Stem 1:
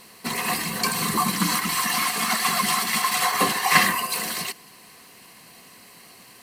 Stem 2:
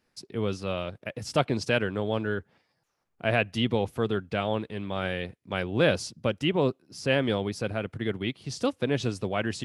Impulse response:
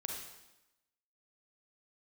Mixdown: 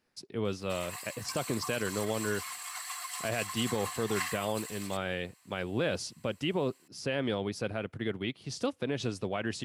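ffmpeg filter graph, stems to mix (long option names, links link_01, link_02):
-filter_complex "[0:a]highpass=frequency=790:width=0.5412,highpass=frequency=790:width=1.3066,equalizer=frequency=7600:width=6.2:gain=12.5,adelay=450,volume=-18dB[link_01];[1:a]lowshelf=frequency=110:gain=-5.5,alimiter=limit=-18dB:level=0:latency=1:release=57,volume=-2.5dB[link_02];[link_01][link_02]amix=inputs=2:normalize=0"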